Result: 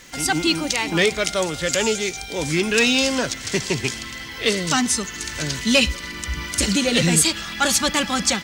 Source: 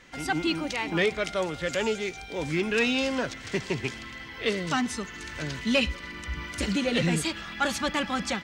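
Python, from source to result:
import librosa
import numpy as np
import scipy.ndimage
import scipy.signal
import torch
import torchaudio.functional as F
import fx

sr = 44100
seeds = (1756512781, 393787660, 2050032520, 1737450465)

y = fx.dmg_crackle(x, sr, seeds[0], per_s=310.0, level_db=-56.0)
y = fx.bass_treble(y, sr, bass_db=1, treble_db=13)
y = y * 10.0 ** (5.5 / 20.0)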